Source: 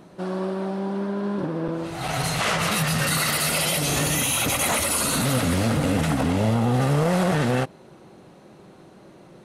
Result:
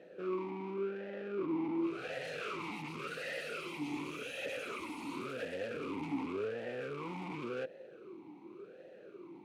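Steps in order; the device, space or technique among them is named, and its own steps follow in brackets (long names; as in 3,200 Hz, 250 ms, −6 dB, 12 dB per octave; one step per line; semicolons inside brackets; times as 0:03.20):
talk box (tube saturation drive 35 dB, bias 0.75; formant filter swept between two vowels e-u 0.9 Hz)
level +10 dB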